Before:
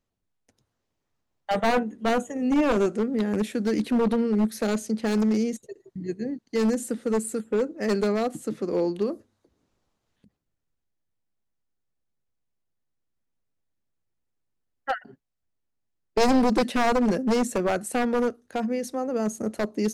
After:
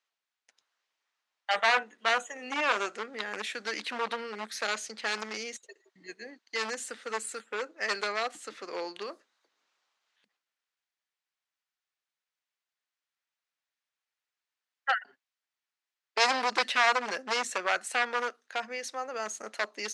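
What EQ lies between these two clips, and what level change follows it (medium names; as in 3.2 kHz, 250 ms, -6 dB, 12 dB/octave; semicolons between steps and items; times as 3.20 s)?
high-pass 1.4 kHz 12 dB/octave; distance through air 94 m; +7.5 dB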